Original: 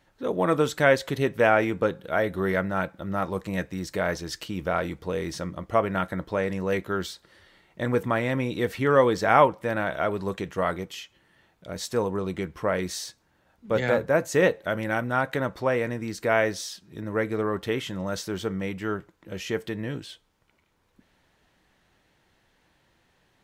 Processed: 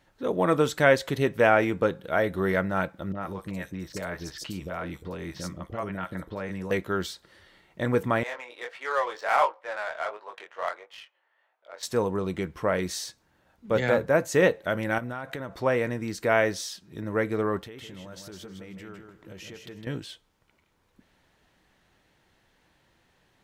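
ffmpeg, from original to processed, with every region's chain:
-filter_complex "[0:a]asettb=1/sr,asplit=3[a][b][c];[a]atrim=end=3.124[d];[b]atrim=start=3.12:end=6.71,asetpts=PTS-STARTPTS,afade=t=in:d=0.004:c=qsin,afade=t=out:st=3.586:d=0.004:c=qsin,acompressor=threshold=-32dB:ratio=2:attack=3.2:release=140:knee=1:detection=peak,acrossover=split=540|4300[e][f][g];[f]adelay=30[h];[g]adelay=90[i];[e][h][i]amix=inputs=3:normalize=0,atrim=end_sample=158319[j];[c]atrim=start=6.706[k];[d][j]acrossfade=d=0.004:c1=hsin:c2=qsin[l];[l][k]acrossfade=d=0.004:c1=qsin:c2=hsin,asettb=1/sr,asplit=3[m][n][o];[m]atrim=end=8.234[p];[n]atrim=start=8.23:end=11.83,asetpts=PTS-STARTPTS,afade=t=in:d=0.004:c=qsin,afade=t=out:st=3.596:d=0.004:c=qsin,highpass=f=610:w=0.5412,highpass=f=610:w=1.3066,flanger=delay=18.5:depth=6.1:speed=1.5,adynamicsmooth=sensitivity=7:basefreq=2.1k[q];[o]atrim=start=11.826[r];[p][q]acrossfade=d=0.004:c1=hsin:c2=qsin[s];[s][r]acrossfade=d=0.004:c1=qsin:c2=hsin,asettb=1/sr,asplit=3[t][u][v];[t]atrim=end=14.984[w];[u]atrim=start=14.98:end=15.55,asetpts=PTS-STARTPTS,afade=t=in:d=0.004:c=qsin,afade=t=out:st=0.566:d=0.004:c=qsin,aeval=exprs='val(0)+0.00355*sin(2*PI*680*n/s)':c=same,acompressor=threshold=-30dB:ratio=12:attack=3.2:release=140:knee=1:detection=peak[x];[v]atrim=start=15.546[y];[w][x]acrossfade=d=0.004:c1=hsin:c2=qsin[z];[z][y]acrossfade=d=0.004:c1=qsin:c2=hsin,asettb=1/sr,asplit=3[aa][ab][ac];[aa]atrim=end=17.614[ad];[ab]atrim=start=17.61:end=19.87,asetpts=PTS-STARTPTS,afade=t=in:d=0.004:c=qsin,afade=t=out:st=2.256:d=0.004:c=qsin,acompressor=threshold=-40dB:ratio=8:attack=3.2:release=140:knee=1:detection=peak,aecho=1:1:158|316|474:0.501|0.11|0.0243,atrim=end_sample=99666[ae];[ac]atrim=start=19.866[af];[ad][ae]acrossfade=d=0.004:c1=hsin:c2=qsin[ag];[ag][af]acrossfade=d=0.004:c1=qsin:c2=hsin"

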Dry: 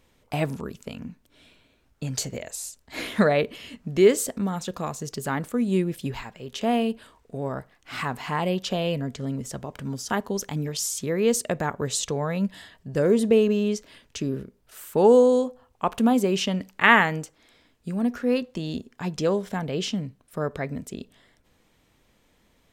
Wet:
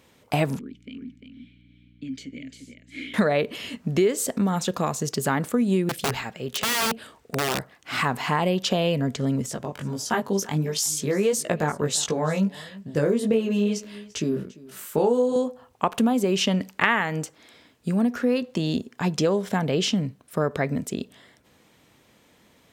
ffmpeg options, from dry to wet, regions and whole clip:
-filter_complex "[0:a]asettb=1/sr,asplit=3[a][b][c];[a]atrim=end=0.594[d];[b]atrim=start=0.59:end=3.14,asetpts=PTS-STARTPTS,afade=t=in:d=0.004:c=qsin,afade=t=out:st=2.546:d=0.004:c=qsin,asplit=3[e][f][g];[e]bandpass=f=270:t=q:w=8,volume=0dB[h];[f]bandpass=f=2.29k:t=q:w=8,volume=-6dB[i];[g]bandpass=f=3.01k:t=q:w=8,volume=-9dB[j];[h][i][j]amix=inputs=3:normalize=0,aecho=1:1:348:0.447,atrim=end_sample=112455,aeval=exprs='val(0)+0.00158*(sin(2*PI*60*n/s)+sin(2*PI*2*60*n/s)/2+sin(2*PI*3*60*n/s)/3+sin(2*PI*4*60*n/s)/4+sin(2*PI*5*60*n/s)/5)':c=same[k];[c]atrim=start=3.136[l];[d][k]acrossfade=d=0.004:c1=hsin:c2=qsin[m];[m][l]acrossfade=d=0.004:c1=qsin:c2=hsin,asettb=1/sr,asplit=3[n][o][p];[n]atrim=end=5.894[q];[o]atrim=start=5.89:end=7.59,asetpts=PTS-STARTPTS,afade=t=in:d=0.004:c=qsin,afade=t=out:st=1.696:d=0.004:c=qsin,bandreject=f=1k:w=6.8,aeval=exprs='(mod(16.8*val(0)+1,2)-1)/16.8':c=same[r];[p]atrim=start=7.586[s];[q][r]acrossfade=d=0.004:c1=hsin:c2=qsin[t];[t][s]acrossfade=d=0.004:c1=qsin:c2=hsin,asettb=1/sr,asplit=3[u][v][w];[u]atrim=end=9.464[x];[v]atrim=start=9.46:end=15.36,asetpts=PTS-STARTPTS,afade=t=in:d=0.004:c=qsin,afade=t=out:st=5.896:d=0.004:c=qsin,flanger=delay=17.5:depth=3.3:speed=1.5,aecho=1:1:344:0.0841,atrim=end_sample=260190[y];[w]atrim=start=15.356[z];[x][y]acrossfade=d=0.004:c1=hsin:c2=qsin[aa];[aa][z]acrossfade=d=0.004:c1=qsin:c2=hsin,highpass=100,acompressor=threshold=-25dB:ratio=5,volume=6.5dB"

